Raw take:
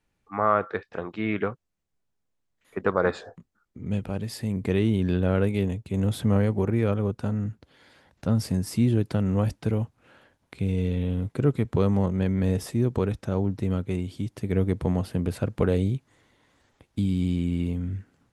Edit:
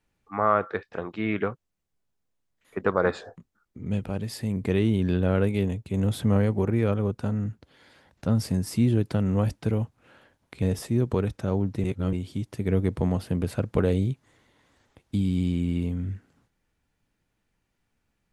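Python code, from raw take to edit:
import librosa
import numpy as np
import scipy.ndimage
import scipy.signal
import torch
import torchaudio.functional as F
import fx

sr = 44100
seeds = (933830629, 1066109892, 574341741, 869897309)

y = fx.edit(x, sr, fx.cut(start_s=10.62, length_s=1.84),
    fx.reverse_span(start_s=13.68, length_s=0.29), tone=tone)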